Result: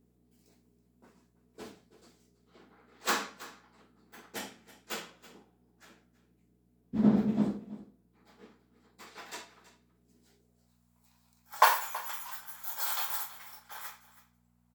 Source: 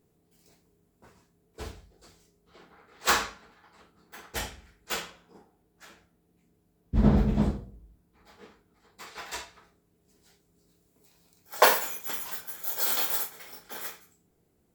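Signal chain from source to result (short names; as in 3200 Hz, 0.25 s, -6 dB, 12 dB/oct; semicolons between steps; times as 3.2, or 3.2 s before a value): echo 0.326 s -17.5 dB; high-pass sweep 230 Hz -> 940 Hz, 10.22–10.76; buzz 60 Hz, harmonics 4, -64 dBFS 0 dB/oct; gain -6.5 dB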